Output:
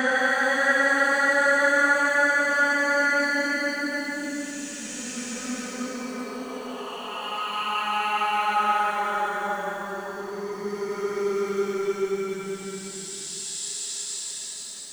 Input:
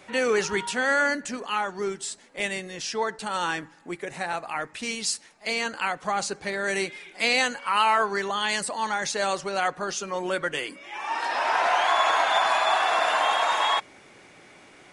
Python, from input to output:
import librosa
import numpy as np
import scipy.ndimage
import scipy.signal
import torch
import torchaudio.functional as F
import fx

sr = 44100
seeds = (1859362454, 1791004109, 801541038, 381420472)

y = fx.paulstretch(x, sr, seeds[0], factor=11.0, window_s=0.25, from_s=0.81)
y = fx.echo_crushed(y, sr, ms=94, feedback_pct=80, bits=7, wet_db=-14.5)
y = F.gain(torch.from_numpy(y), 1.0).numpy()